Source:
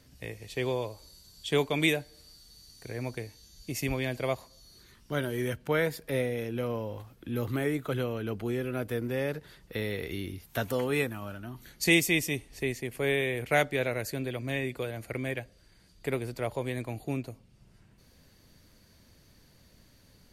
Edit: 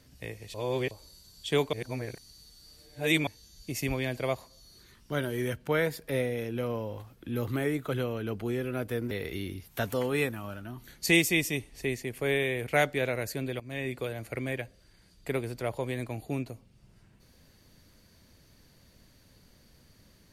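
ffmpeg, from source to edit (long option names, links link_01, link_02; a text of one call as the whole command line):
ffmpeg -i in.wav -filter_complex "[0:a]asplit=7[link_01][link_02][link_03][link_04][link_05][link_06][link_07];[link_01]atrim=end=0.542[link_08];[link_02]atrim=start=0.538:end=0.912,asetpts=PTS-STARTPTS,areverse[link_09];[link_03]atrim=start=0.908:end=1.732[link_10];[link_04]atrim=start=1.728:end=3.272,asetpts=PTS-STARTPTS,areverse[link_11];[link_05]atrim=start=3.268:end=9.112[link_12];[link_06]atrim=start=9.888:end=14.38,asetpts=PTS-STARTPTS,afade=type=out:start_time=4.488:duration=0.004:curve=hsin:silence=0.199526[link_13];[link_07]atrim=start=14.38,asetpts=PTS-STARTPTS,afade=type=in:duration=0.31:silence=0.199526[link_14];[link_08][link_09]acrossfade=duration=0.004:curve1=hsin:curve2=hsin[link_15];[link_15][link_10]acrossfade=duration=0.004:curve1=hsin:curve2=hsin[link_16];[link_16][link_11]acrossfade=duration=0.004:curve1=hsin:curve2=hsin[link_17];[link_17][link_12]acrossfade=duration=0.004:curve1=hsin:curve2=hsin[link_18];[link_13][link_14]concat=n=2:v=0:a=1[link_19];[link_18][link_19]acrossfade=duration=0.004:curve1=hsin:curve2=hsin" out.wav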